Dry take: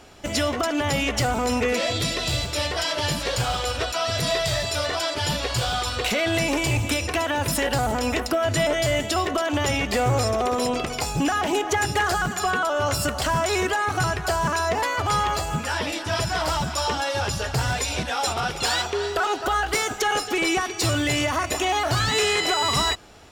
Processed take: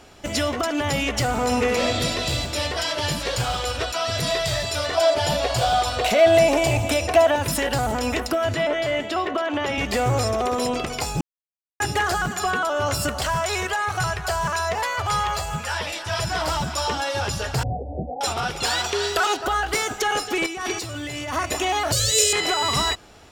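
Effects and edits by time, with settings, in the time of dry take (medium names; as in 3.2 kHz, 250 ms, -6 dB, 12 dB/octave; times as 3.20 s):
1.23–2.00 s: reverb throw, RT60 2.8 s, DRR 3.5 dB
4.97–7.36 s: peaking EQ 670 Hz +13.5 dB 0.47 oct
8.54–9.78 s: three-band isolator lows -13 dB, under 190 Hz, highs -15 dB, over 3.8 kHz
11.21–11.80 s: mute
13.26–16.23 s: peaking EQ 280 Hz -14.5 dB
17.63–18.21 s: steep low-pass 790 Hz 96 dB/octave
18.84–19.37 s: treble shelf 2.1 kHz +9 dB
20.46–21.34 s: compressor with a negative ratio -30 dBFS
21.92–22.33 s: FFT filter 110 Hz 0 dB, 210 Hz -23 dB, 390 Hz -6 dB, 550 Hz +13 dB, 790 Hz -22 dB, 2.2 kHz -6 dB, 6.8 kHz +12 dB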